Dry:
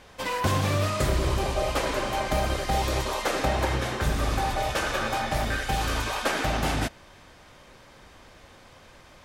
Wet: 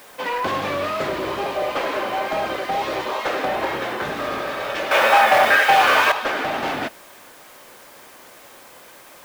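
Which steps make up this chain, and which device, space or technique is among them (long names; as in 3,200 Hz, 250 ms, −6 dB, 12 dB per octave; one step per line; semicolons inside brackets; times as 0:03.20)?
tape answering machine (band-pass filter 310–3,100 Hz; soft clipping −22.5 dBFS, distortion −17 dB; tape wow and flutter; white noise bed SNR 23 dB)
0:04.26–0:05.06: healed spectral selection 380–1,700 Hz
0:04.91–0:06.12: drawn EQ curve 310 Hz 0 dB, 580 Hz +10 dB, 2,700 Hz +12 dB, 3,800 Hz +8 dB, 8,900 Hz +12 dB
level +6.5 dB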